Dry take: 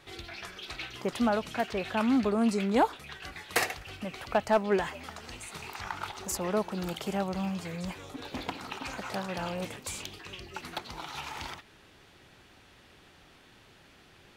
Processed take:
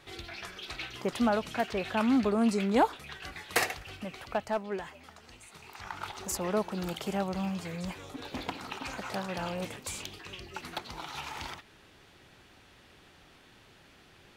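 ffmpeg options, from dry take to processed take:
ffmpeg -i in.wav -af "volume=8.5dB,afade=type=out:start_time=3.73:duration=0.98:silence=0.354813,afade=type=in:start_time=5.64:duration=0.52:silence=0.375837" out.wav

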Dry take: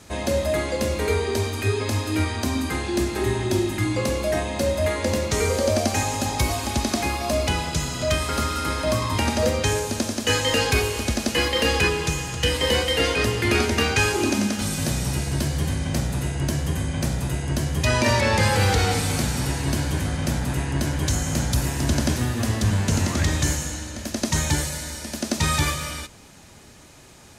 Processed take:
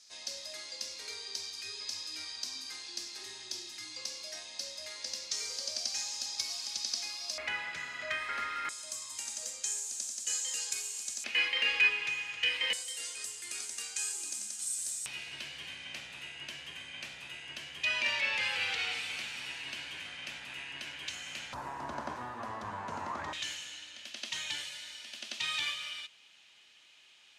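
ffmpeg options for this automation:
ffmpeg -i in.wav -af "asetnsamples=nb_out_samples=441:pad=0,asendcmd='7.38 bandpass f 1900;8.69 bandpass f 7400;11.24 bandpass f 2400;12.73 bandpass f 8000;15.06 bandpass f 2700;21.53 bandpass f 1000;23.33 bandpass f 3000',bandpass=frequency=5100:width_type=q:width=3.5:csg=0" out.wav

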